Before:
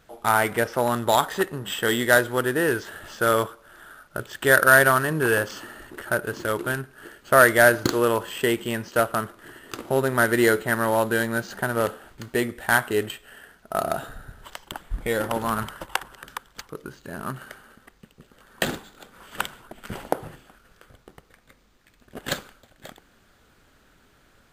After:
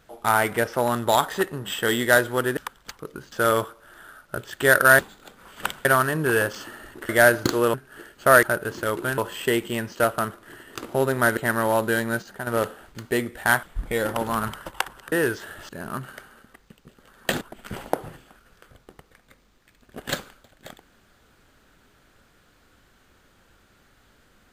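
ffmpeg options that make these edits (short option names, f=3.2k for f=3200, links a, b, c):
-filter_complex "[0:a]asplit=16[a][b][c][d][e][f][g][h][i][j][k][l][m][n][o][p];[a]atrim=end=2.572[q];[b]atrim=start=16.268:end=17.022[r];[c]atrim=start=3.138:end=4.812[s];[d]atrim=start=18.738:end=19.602[t];[e]atrim=start=4.808:end=6.052[u];[f]atrim=start=7.488:end=8.142[v];[g]atrim=start=6.798:end=7.492[w];[h]atrim=start=6.048:end=6.802[x];[i]atrim=start=8.138:end=10.332[y];[j]atrim=start=10.598:end=11.452[z];[k]atrim=start=11.448:end=11.702,asetpts=PTS-STARTPTS,volume=-7dB[aa];[l]atrim=start=11.698:end=12.862[ab];[m]atrim=start=14.778:end=16.272[ac];[n]atrim=start=2.568:end=3.142[ad];[o]atrim=start=17.018:end=18.742[ae];[p]atrim=start=19.598[af];[q][r]acrossfade=d=0.004:c1=hsin:c2=hsin[ag];[ag][s]acrossfade=d=0.004:c1=hsin:c2=hsin[ah];[ah][t]acrossfade=d=0.004:c1=hsin:c2=hsin[ai];[ai][u]acrossfade=d=0.004:c1=hsin:c2=hsin[aj];[aj][v]acrossfade=d=0.004:c1=hsin:c2=hsin[ak];[ak][w]acrossfade=d=0.004:c1=hsin:c2=hsin[al];[al][x]acrossfade=d=0.004:c1=hsin:c2=hsin[am];[am][y]acrossfade=d=0.004:c1=hsin:c2=hsin[an];[an][z]acrossfade=d=0.004:c1=hsin:c2=hsin[ao];[ao][aa]acrossfade=d=0.004:c1=hsin:c2=hsin[ap];[ap][ab]acrossfade=d=0.004:c1=hsin:c2=hsin[aq];[aq][ac]acrossfade=d=0.004:c1=hsin:c2=hsin[ar];[ar][ad]acrossfade=d=0.004:c1=hsin:c2=hsin[as];[as][ae]acrossfade=d=0.004:c1=hsin:c2=hsin[at];[at][af]acrossfade=d=0.004:c1=hsin:c2=hsin"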